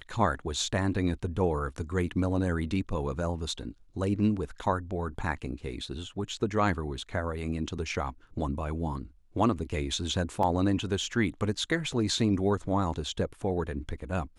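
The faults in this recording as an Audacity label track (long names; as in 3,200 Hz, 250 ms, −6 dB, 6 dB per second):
10.430000	10.430000	drop-out 3.1 ms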